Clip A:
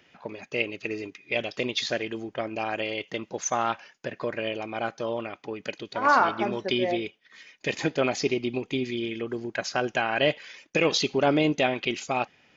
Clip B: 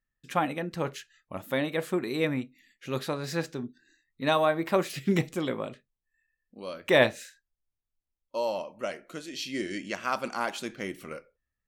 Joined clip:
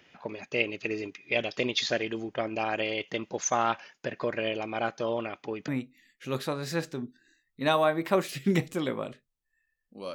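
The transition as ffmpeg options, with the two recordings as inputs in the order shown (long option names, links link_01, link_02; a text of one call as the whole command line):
ffmpeg -i cue0.wav -i cue1.wav -filter_complex "[0:a]apad=whole_dur=10.14,atrim=end=10.14,atrim=end=5.682[link_01];[1:a]atrim=start=2.288:end=6.75[link_02];[link_01][link_02]acrossfade=duration=0.004:curve1=hsin:curve2=hsin" out.wav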